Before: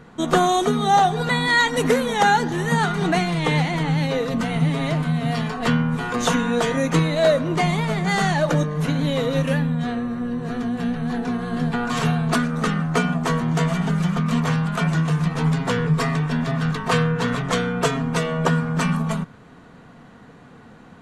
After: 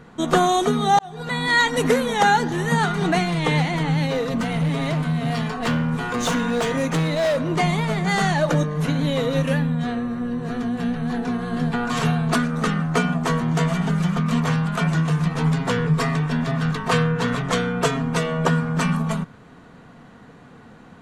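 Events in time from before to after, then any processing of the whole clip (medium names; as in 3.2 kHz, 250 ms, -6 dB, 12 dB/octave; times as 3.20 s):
0.99–1.56 s: fade in
4.09–7.52 s: hard clipper -17.5 dBFS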